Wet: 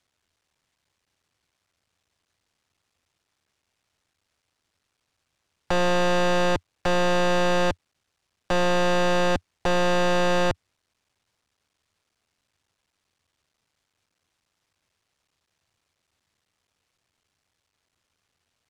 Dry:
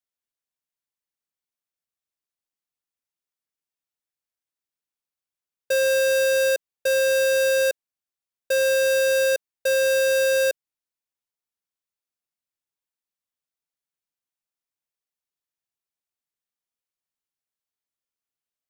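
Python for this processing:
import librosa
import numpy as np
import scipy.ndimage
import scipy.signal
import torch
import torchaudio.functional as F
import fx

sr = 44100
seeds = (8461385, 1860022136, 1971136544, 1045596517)

y = fx.cycle_switch(x, sr, every=3, mode='muted')
y = fx.peak_eq(y, sr, hz=88.0, db=10.0, octaves=0.96)
y = fx.fold_sine(y, sr, drive_db=18, ceiling_db=-17.0)
y = fx.air_absorb(y, sr, metres=70.0)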